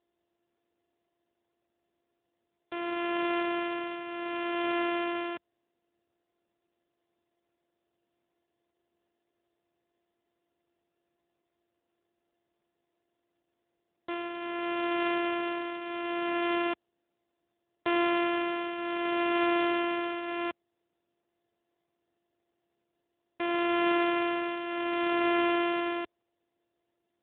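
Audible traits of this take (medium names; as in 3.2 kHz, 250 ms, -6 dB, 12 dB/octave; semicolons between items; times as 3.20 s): a buzz of ramps at a fixed pitch in blocks of 128 samples; tremolo triangle 0.68 Hz, depth 70%; AMR-NB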